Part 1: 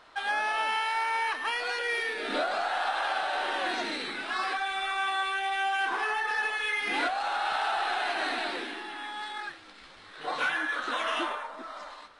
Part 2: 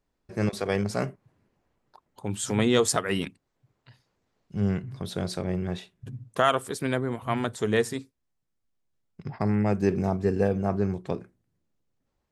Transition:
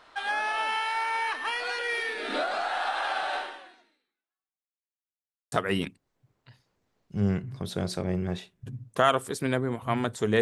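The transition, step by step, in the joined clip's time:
part 1
3.36–4.85 fade out exponential
4.85–5.52 mute
5.52 switch to part 2 from 2.92 s

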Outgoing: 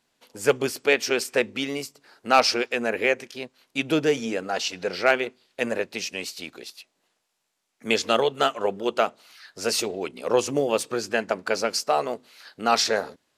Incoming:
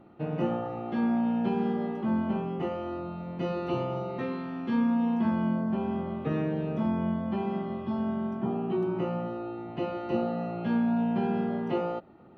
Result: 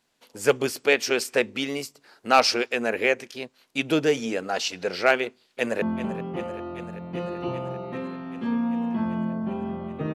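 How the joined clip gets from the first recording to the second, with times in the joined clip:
outgoing
5.18–5.82 echo throw 0.39 s, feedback 80%, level -13.5 dB
5.82 switch to incoming from 2.08 s

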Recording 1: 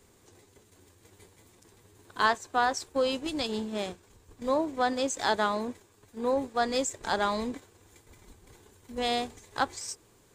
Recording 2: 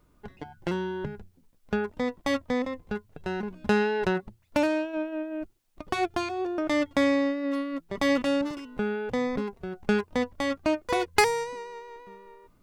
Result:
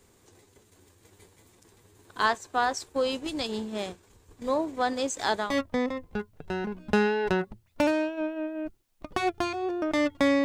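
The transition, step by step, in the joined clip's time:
recording 1
5.46 switch to recording 2 from 2.22 s, crossfade 0.22 s

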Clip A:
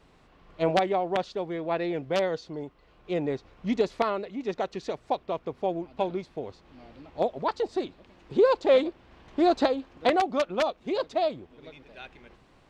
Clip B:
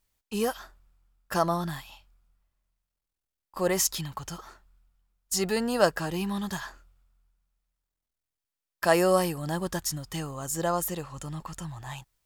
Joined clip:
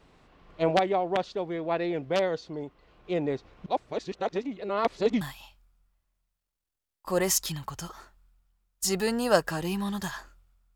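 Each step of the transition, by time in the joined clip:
clip A
3.66–5.21 reverse
5.21 switch to clip B from 1.7 s

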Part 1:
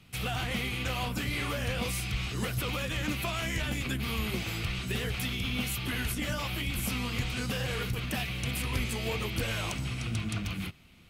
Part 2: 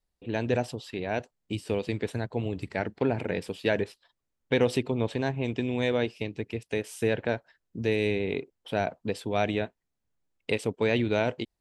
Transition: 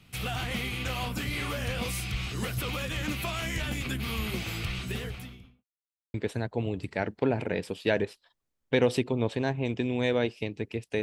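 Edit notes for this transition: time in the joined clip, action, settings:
part 1
4.74–5.65 studio fade out
5.65–6.14 mute
6.14 switch to part 2 from 1.93 s

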